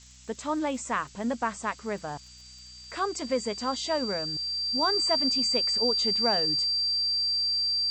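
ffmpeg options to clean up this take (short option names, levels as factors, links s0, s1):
-af "adeclick=t=4,bandreject=f=62.1:t=h:w=4,bandreject=f=124.2:t=h:w=4,bandreject=f=186.3:t=h:w=4,bandreject=f=248.4:t=h:w=4,bandreject=f=4700:w=30,afftdn=nr=26:nf=-49"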